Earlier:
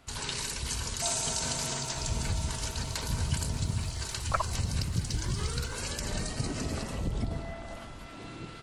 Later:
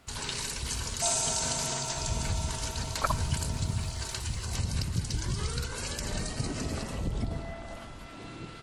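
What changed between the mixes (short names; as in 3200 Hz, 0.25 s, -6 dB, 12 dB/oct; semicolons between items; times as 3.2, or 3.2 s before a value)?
speech: entry -1.30 s; second sound +3.5 dB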